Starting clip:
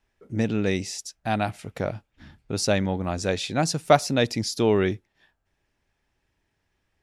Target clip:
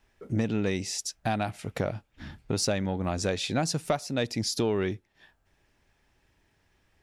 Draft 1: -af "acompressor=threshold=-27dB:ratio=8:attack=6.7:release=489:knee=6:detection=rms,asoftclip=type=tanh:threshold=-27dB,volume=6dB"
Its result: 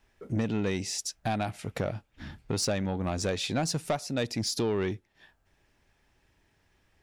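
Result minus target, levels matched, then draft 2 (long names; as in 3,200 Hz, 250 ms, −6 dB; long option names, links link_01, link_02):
soft clipping: distortion +10 dB
-af "acompressor=threshold=-27dB:ratio=8:attack=6.7:release=489:knee=6:detection=rms,asoftclip=type=tanh:threshold=-20dB,volume=6dB"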